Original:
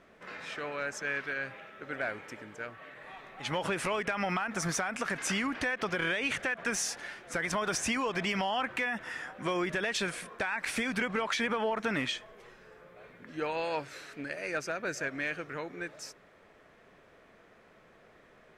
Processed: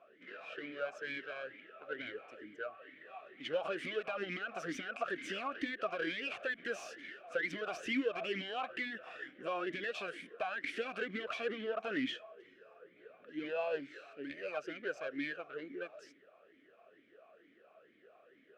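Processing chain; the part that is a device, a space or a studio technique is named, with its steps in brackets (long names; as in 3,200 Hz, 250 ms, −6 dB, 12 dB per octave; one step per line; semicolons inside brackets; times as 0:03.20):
talk box (tube saturation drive 30 dB, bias 0.75; formant filter swept between two vowels a-i 2.2 Hz)
level +10.5 dB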